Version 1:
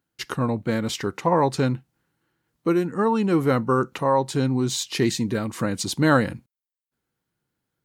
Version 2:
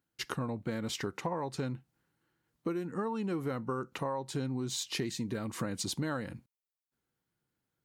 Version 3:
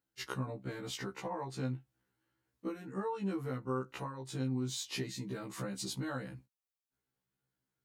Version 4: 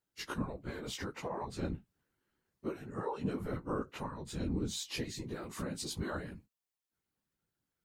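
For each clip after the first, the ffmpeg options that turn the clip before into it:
ffmpeg -i in.wav -af "acompressor=threshold=-26dB:ratio=12,volume=-5dB" out.wav
ffmpeg -i in.wav -af "afftfilt=real='re*1.73*eq(mod(b,3),0)':imag='im*1.73*eq(mod(b,3),0)':win_size=2048:overlap=0.75,volume=-1.5dB" out.wav
ffmpeg -i in.wav -af "afftfilt=real='hypot(re,im)*cos(2*PI*random(0))':imag='hypot(re,im)*sin(2*PI*random(1))':win_size=512:overlap=0.75,volume=6dB" out.wav

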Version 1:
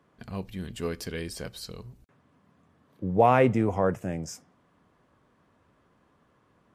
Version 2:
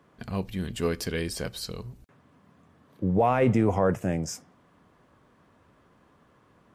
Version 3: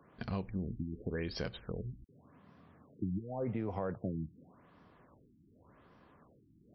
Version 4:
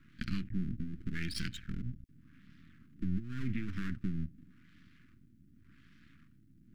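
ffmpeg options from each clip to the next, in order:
ffmpeg -i in.wav -af "alimiter=limit=-17.5dB:level=0:latency=1:release=14,volume=4.5dB" out.wav
ffmpeg -i in.wav -af "acompressor=threshold=-31dB:ratio=10,afftfilt=real='re*lt(b*sr/1024,340*pow(6000/340,0.5+0.5*sin(2*PI*0.88*pts/sr)))':imag='im*lt(b*sr/1024,340*pow(6000/340,0.5+0.5*sin(2*PI*0.88*pts/sr)))':win_size=1024:overlap=0.75,volume=-1.5dB" out.wav
ffmpeg -i in.wav -af "aeval=exprs='max(val(0),0)':channel_layout=same,asuperstop=centerf=660:order=8:qfactor=0.54,volume=8dB" out.wav

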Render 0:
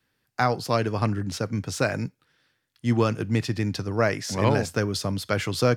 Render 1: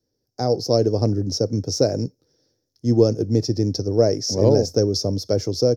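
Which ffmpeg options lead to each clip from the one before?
ffmpeg -i in.wav -af "firequalizer=gain_entry='entry(100,0);entry(170,-5);entry(310,3);entry(480,5);entry(1100,-20);entry(2800,-25);entry(5500,8);entry(8100,-17);entry(14000,-6)':delay=0.05:min_phase=1,dynaudnorm=framelen=120:gausssize=7:maxgain=6dB" out.wav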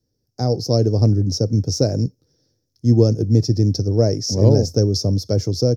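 ffmpeg -i in.wav -af "bass=frequency=250:gain=10,treble=frequency=4000:gain=4,volume=-2.5dB" out.wav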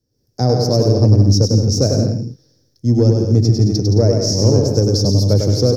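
ffmpeg -i in.wav -filter_complex "[0:a]dynaudnorm=framelen=100:gausssize=3:maxgain=7dB,aeval=exprs='0.944*(cos(1*acos(clip(val(0)/0.944,-1,1)))-cos(1*PI/2))+0.0237*(cos(5*acos(clip(val(0)/0.944,-1,1)))-cos(5*PI/2))':channel_layout=same,asplit=2[link_01][link_02];[link_02]aecho=0:1:100|170|219|253.3|277.3:0.631|0.398|0.251|0.158|0.1[link_03];[link_01][link_03]amix=inputs=2:normalize=0,volume=-1.5dB" out.wav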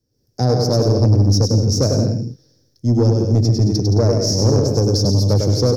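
ffmpeg -i in.wav -af "asoftclip=type=tanh:threshold=-7dB" out.wav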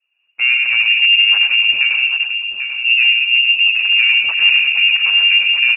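ffmpeg -i in.wav -filter_complex "[0:a]asplit=2[link_01][link_02];[link_02]acrusher=samples=9:mix=1:aa=0.000001:lfo=1:lforange=9:lforate=1.6,volume=-8dB[link_03];[link_01][link_03]amix=inputs=2:normalize=0,aecho=1:1:792:0.398,lowpass=frequency=2500:width_type=q:width=0.5098,lowpass=frequency=2500:width_type=q:width=0.6013,lowpass=frequency=2500:width_type=q:width=0.9,lowpass=frequency=2500:width_type=q:width=2.563,afreqshift=-2900,volume=-1.5dB" out.wav

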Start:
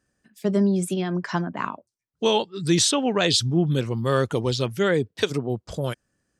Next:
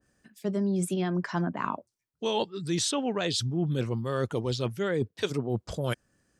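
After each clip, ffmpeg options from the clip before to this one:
ffmpeg -i in.wav -af "areverse,acompressor=threshold=-29dB:ratio=6,areverse,adynamicequalizer=threshold=0.00398:dfrequency=1800:dqfactor=0.7:tfrequency=1800:tqfactor=0.7:attack=5:release=100:ratio=0.375:range=1.5:mode=cutabove:tftype=highshelf,volume=3.5dB" out.wav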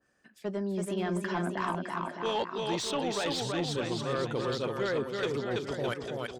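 ffmpeg -i in.wav -filter_complex "[0:a]asplit=2[link_01][link_02];[link_02]aecho=0:1:330|610.5|848.9|1052|1224:0.631|0.398|0.251|0.158|0.1[link_03];[link_01][link_03]amix=inputs=2:normalize=0,asplit=2[link_04][link_05];[link_05]highpass=frequency=720:poles=1,volume=16dB,asoftclip=type=tanh:threshold=-12dB[link_06];[link_04][link_06]amix=inputs=2:normalize=0,lowpass=frequency=2300:poles=1,volume=-6dB,volume=-7dB" out.wav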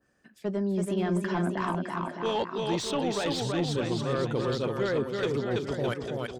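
ffmpeg -i in.wav -af "lowshelf=frequency=420:gain=6" out.wav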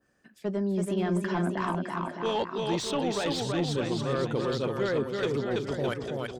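ffmpeg -i in.wav -af "bandreject=frequency=60:width_type=h:width=6,bandreject=frequency=120:width_type=h:width=6" out.wav

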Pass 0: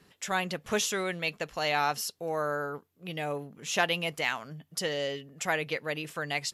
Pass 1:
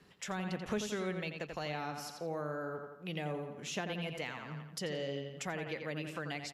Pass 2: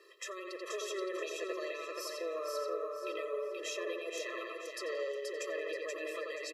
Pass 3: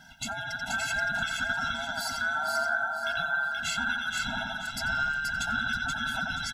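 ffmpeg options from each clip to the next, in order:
ffmpeg -i in.wav -filter_complex "[0:a]highshelf=frequency=8200:gain=-10,asplit=2[link_01][link_02];[link_02]adelay=86,lowpass=frequency=4800:poles=1,volume=-7dB,asplit=2[link_03][link_04];[link_04]adelay=86,lowpass=frequency=4800:poles=1,volume=0.46,asplit=2[link_05][link_06];[link_06]adelay=86,lowpass=frequency=4800:poles=1,volume=0.46,asplit=2[link_07][link_08];[link_08]adelay=86,lowpass=frequency=4800:poles=1,volume=0.46,asplit=2[link_09][link_10];[link_10]adelay=86,lowpass=frequency=4800:poles=1,volume=0.46[link_11];[link_01][link_03][link_05][link_07][link_09][link_11]amix=inputs=6:normalize=0,acrossover=split=340[link_12][link_13];[link_13]acompressor=threshold=-38dB:ratio=5[link_14];[link_12][link_14]amix=inputs=2:normalize=0,volume=-1.5dB" out.wav
ffmpeg -i in.wav -filter_complex "[0:a]alimiter=level_in=10.5dB:limit=-24dB:level=0:latency=1:release=38,volume=-10.5dB,asplit=2[link_01][link_02];[link_02]aecho=0:1:479|958|1437|1916:0.668|0.187|0.0524|0.0147[link_03];[link_01][link_03]amix=inputs=2:normalize=0,afftfilt=real='re*eq(mod(floor(b*sr/1024/340),2),1)':imag='im*eq(mod(floor(b*sr/1024/340),2),1)':win_size=1024:overlap=0.75,volume=6.5dB" out.wav
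ffmpeg -i in.wav -af "afftfilt=real='real(if(between(b,1,1012),(2*floor((b-1)/92)+1)*92-b,b),0)':imag='imag(if(between(b,1,1012),(2*floor((b-1)/92)+1)*92-b,b),0)*if(between(b,1,1012),-1,1)':win_size=2048:overlap=0.75,volume=8.5dB" out.wav

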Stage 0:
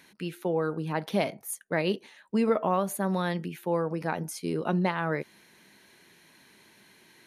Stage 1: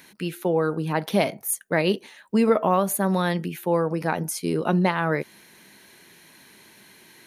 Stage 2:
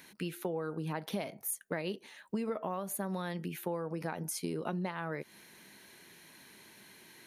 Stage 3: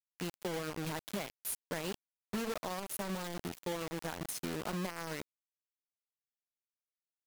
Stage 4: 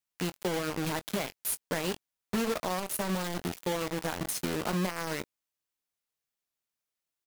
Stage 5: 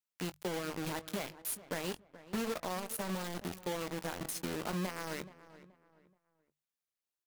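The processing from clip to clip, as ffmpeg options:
ffmpeg -i in.wav -af "highshelf=frequency=11000:gain=9,volume=5.5dB" out.wav
ffmpeg -i in.wav -af "acompressor=threshold=-28dB:ratio=6,volume=-5dB" out.wav
ffmpeg -i in.wav -af "acrusher=bits=5:mix=0:aa=0.000001,volume=-3dB" out.wav
ffmpeg -i in.wav -filter_complex "[0:a]asplit=2[link_01][link_02];[link_02]adelay=22,volume=-14dB[link_03];[link_01][link_03]amix=inputs=2:normalize=0,volume=6.5dB" out.wav
ffmpeg -i in.wav -filter_complex "[0:a]bandreject=frequency=50:width_type=h:width=6,bandreject=frequency=100:width_type=h:width=6,bandreject=frequency=150:width_type=h:width=6,asplit=2[link_01][link_02];[link_02]adelay=427,lowpass=frequency=2200:poles=1,volume=-16dB,asplit=2[link_03][link_04];[link_04]adelay=427,lowpass=frequency=2200:poles=1,volume=0.33,asplit=2[link_05][link_06];[link_06]adelay=427,lowpass=frequency=2200:poles=1,volume=0.33[link_07];[link_01][link_03][link_05][link_07]amix=inputs=4:normalize=0,volume=-6dB" out.wav

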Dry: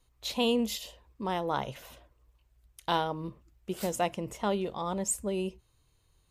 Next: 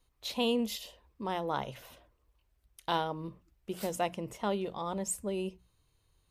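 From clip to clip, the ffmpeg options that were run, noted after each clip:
ffmpeg -i in.wav -af "equalizer=frequency=7100:width_type=o:width=0.33:gain=-3.5,bandreject=frequency=60:width_type=h:width=6,bandreject=frequency=120:width_type=h:width=6,bandreject=frequency=180:width_type=h:width=6,volume=-2.5dB" out.wav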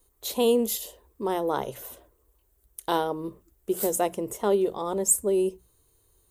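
ffmpeg -i in.wav -af "equalizer=frequency=160:width_type=o:width=0.67:gain=-5,equalizer=frequency=400:width_type=o:width=0.67:gain=10,equalizer=frequency=2500:width_type=o:width=0.67:gain=-6,aexciter=amount=3.5:drive=6.1:freq=6900,volume=4dB" out.wav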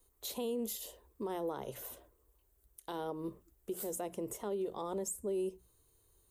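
ffmpeg -i in.wav -filter_complex "[0:a]acrossover=split=420[link_01][link_02];[link_02]acompressor=threshold=-27dB:ratio=6[link_03];[link_01][link_03]amix=inputs=2:normalize=0,alimiter=level_in=0.5dB:limit=-24dB:level=0:latency=1:release=189,volume=-0.5dB,volume=-5dB" out.wav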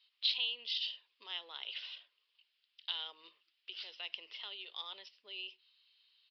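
ffmpeg -i in.wav -af "highpass=frequency=2900:width_type=q:width=3.9,aresample=11025,aresample=44100,volume=8dB" out.wav

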